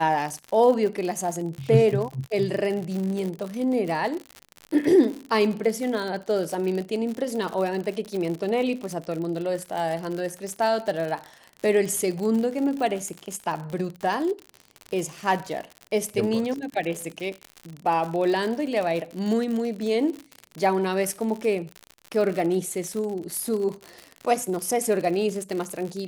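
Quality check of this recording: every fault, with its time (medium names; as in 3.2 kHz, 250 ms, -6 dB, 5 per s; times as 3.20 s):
crackle 71 per s -29 dBFS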